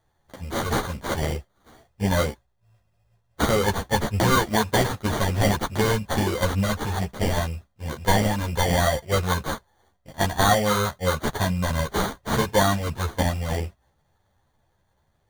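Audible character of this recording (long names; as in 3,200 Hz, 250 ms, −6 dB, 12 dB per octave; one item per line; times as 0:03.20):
aliases and images of a low sample rate 2,600 Hz, jitter 0%
a shimmering, thickened sound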